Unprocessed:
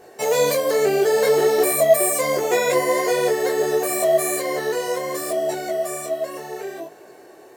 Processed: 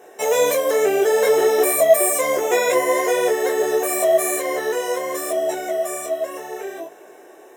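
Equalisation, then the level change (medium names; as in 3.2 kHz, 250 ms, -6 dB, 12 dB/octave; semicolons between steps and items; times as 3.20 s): high-pass 280 Hz 12 dB/octave; Butterworth band-stop 4.5 kHz, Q 4.3; +1.5 dB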